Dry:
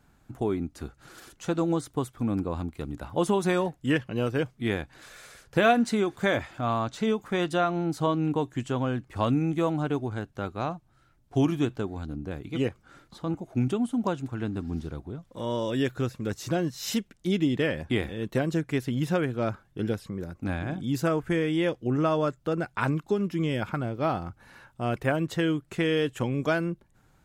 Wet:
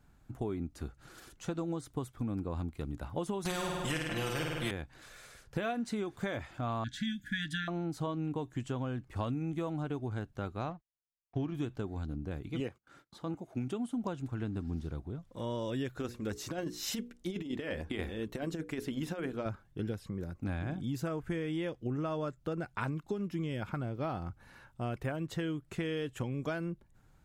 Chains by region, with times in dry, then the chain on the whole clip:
3.45–4.71 s: comb 5.8 ms, depth 95% + flutter echo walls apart 8.8 m, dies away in 0.69 s + spectrum-flattening compressor 2:1
6.84–7.68 s: brick-wall FIR band-stop 310–1400 Hz + small resonant body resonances 1/1.7/3.3 kHz, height 16 dB, ringing for 25 ms
10.70–11.55 s: companding laws mixed up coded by A + gate -55 dBFS, range -37 dB + distance through air 180 m
12.60–13.93 s: high-pass 210 Hz 6 dB/octave + gate -57 dBFS, range -23 dB
15.96–19.46 s: peaking EQ 130 Hz -12 dB 0.65 oct + hum notches 60/120/180/240/300/360/420/480 Hz + compressor with a negative ratio -29 dBFS, ratio -0.5
whole clip: bass shelf 110 Hz +7.5 dB; compression, threshold -26 dBFS; trim -5.5 dB

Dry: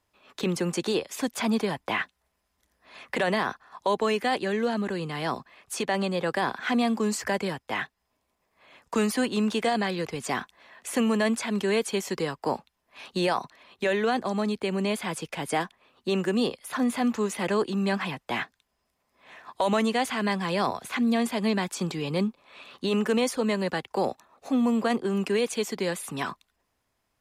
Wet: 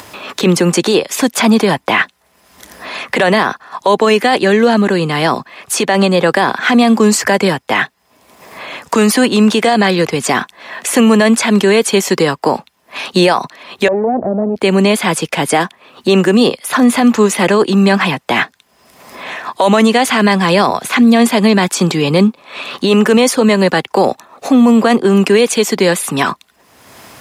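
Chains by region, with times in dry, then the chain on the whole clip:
13.88–14.56 s: comb filter that takes the minimum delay 0.44 ms + four-pole ladder low-pass 810 Hz, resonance 50% + level flattener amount 50%
whole clip: upward compressor, threshold -35 dBFS; high-pass 120 Hz 12 dB/octave; loudness maximiser +18.5 dB; trim -1 dB

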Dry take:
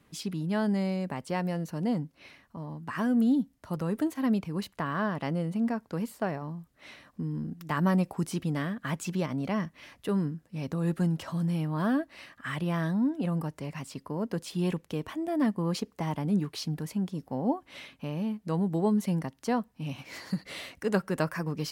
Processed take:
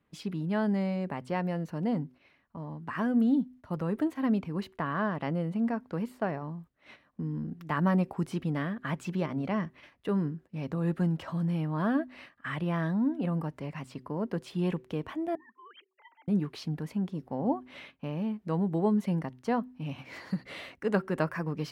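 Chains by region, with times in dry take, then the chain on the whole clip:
15.35–16.28 s: formants replaced by sine waves + high-pass 1.5 kHz + compressor with a negative ratio -49 dBFS, ratio -0.5
whole clip: de-hum 126.2 Hz, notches 3; gate -48 dBFS, range -10 dB; tone controls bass -1 dB, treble -12 dB

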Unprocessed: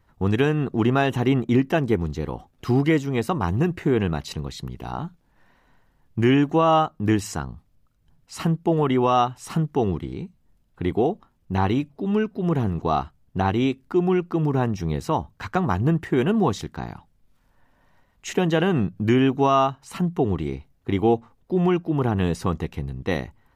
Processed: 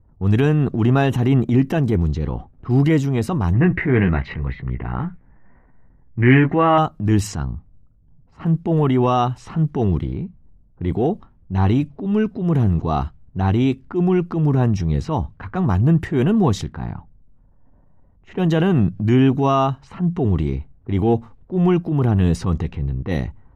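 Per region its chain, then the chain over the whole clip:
3.53–6.78 s: resonant low-pass 2 kHz, resonance Q 5.1 + doubling 16 ms -7 dB
whole clip: level-controlled noise filter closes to 710 Hz, open at -19 dBFS; bass shelf 210 Hz +11 dB; transient shaper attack -7 dB, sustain +4 dB

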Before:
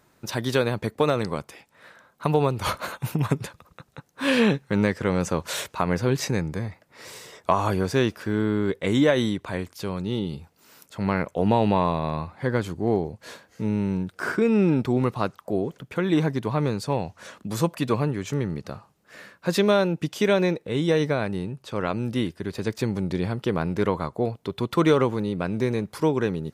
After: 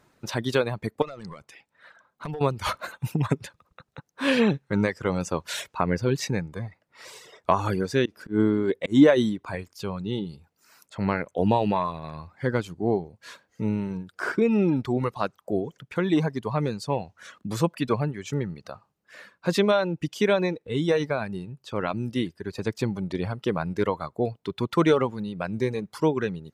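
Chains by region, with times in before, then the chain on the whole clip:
1.02–2.41 s: treble shelf 11 kHz -9.5 dB + compression 8:1, threshold -26 dBFS + overload inside the chain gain 26.5 dB
8.05–9.55 s: peaking EQ 300 Hz +6 dB 1.4 oct + slow attack 130 ms
whole clip: reverb removal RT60 1.5 s; treble shelf 11 kHz -10 dB

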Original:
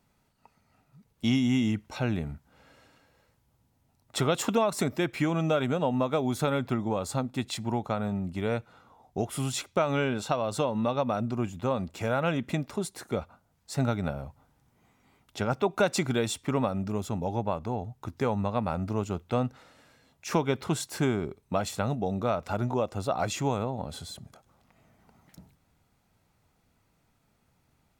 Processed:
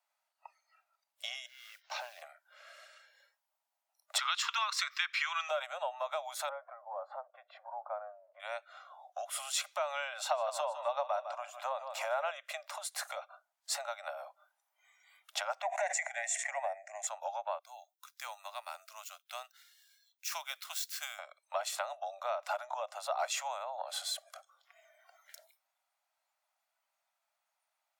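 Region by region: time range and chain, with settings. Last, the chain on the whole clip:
1.46–2.22 s: CVSD coder 32 kbps + compression 5:1, threshold -41 dBFS + modulation noise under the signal 27 dB
4.18–5.49 s: steep high-pass 1.1 kHz + resonant high shelf 7 kHz -13 dB, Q 1.5
6.49–8.40 s: companding laws mixed up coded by mu + low-pass 1.2 kHz + tilt EQ -2.5 dB/octave
10.17–12.31 s: dynamic bell 700 Hz, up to +6 dB, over -41 dBFS, Q 0.74 + feedback delay 155 ms, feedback 33%, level -13 dB
15.62–17.07 s: partial rectifier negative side -3 dB + FFT filter 150 Hz 0 dB, 210 Hz +6 dB, 340 Hz -25 dB, 700 Hz +7 dB, 1.3 kHz -17 dB, 1.9 kHz +12 dB, 3.1 kHz -13 dB, 4.8 kHz -14 dB, 6.9 kHz +7 dB, 15 kHz -24 dB + decay stretcher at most 60 dB/s
17.59–21.19 s: median filter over 5 samples + differentiator
whole clip: compression 6:1, threshold -35 dBFS; steep high-pass 580 Hz 96 dB/octave; spectral noise reduction 16 dB; trim +6 dB

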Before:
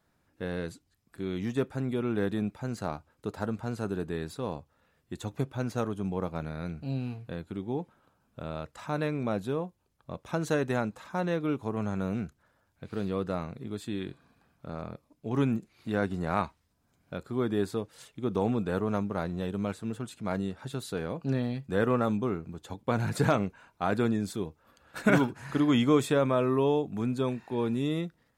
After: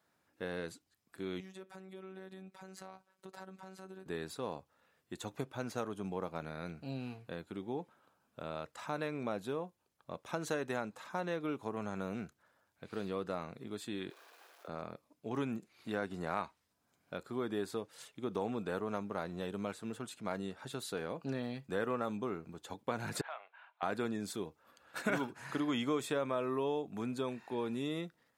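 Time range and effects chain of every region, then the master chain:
1.40–4.06 s: compression, threshold -38 dBFS + robot voice 189 Hz
14.10–14.68 s: jump at every zero crossing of -52 dBFS + steep high-pass 350 Hz 48 dB/octave + peaking EQ 8.3 kHz -4 dB 0.37 oct
23.21–23.83 s: compression 3:1, threshold -36 dBFS + Chebyshev band-pass 690–3400 Hz, order 3
whole clip: high-pass 140 Hz 6 dB/octave; bass shelf 260 Hz -7.5 dB; compression 2:1, threshold -33 dBFS; trim -1.5 dB

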